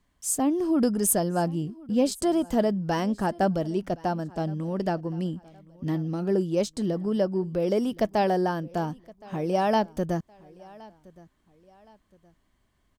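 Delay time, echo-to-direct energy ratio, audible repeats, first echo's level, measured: 1068 ms, -22.5 dB, 2, -23.0 dB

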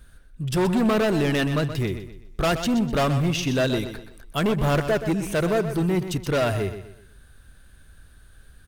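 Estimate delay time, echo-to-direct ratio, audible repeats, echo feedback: 125 ms, -10.0 dB, 3, 36%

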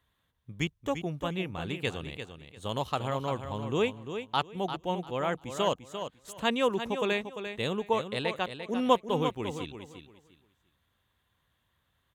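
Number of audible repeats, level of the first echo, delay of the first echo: 2, -9.0 dB, 346 ms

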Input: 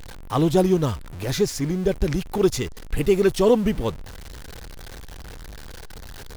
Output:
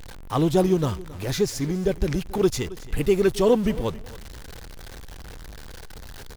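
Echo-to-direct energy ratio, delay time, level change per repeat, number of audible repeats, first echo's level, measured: -18.5 dB, 271 ms, -13.5 dB, 2, -18.5 dB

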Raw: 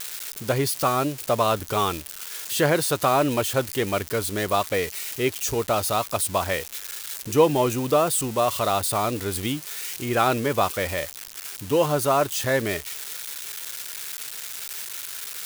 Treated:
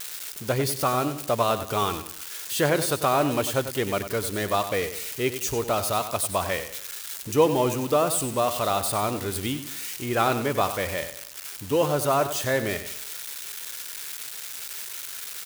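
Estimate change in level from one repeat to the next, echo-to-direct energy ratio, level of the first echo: -8.5 dB, -10.5 dB, -11.0 dB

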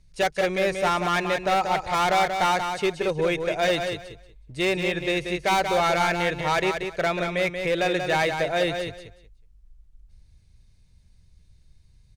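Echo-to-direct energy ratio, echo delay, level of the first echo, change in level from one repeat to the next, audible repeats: -6.5 dB, 184 ms, -6.5 dB, -14.0 dB, 3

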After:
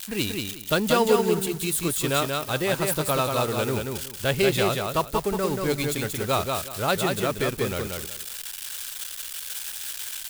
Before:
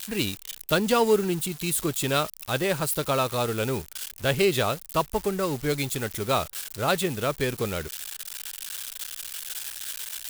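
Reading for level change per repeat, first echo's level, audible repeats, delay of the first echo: -13.0 dB, -4.0 dB, 3, 183 ms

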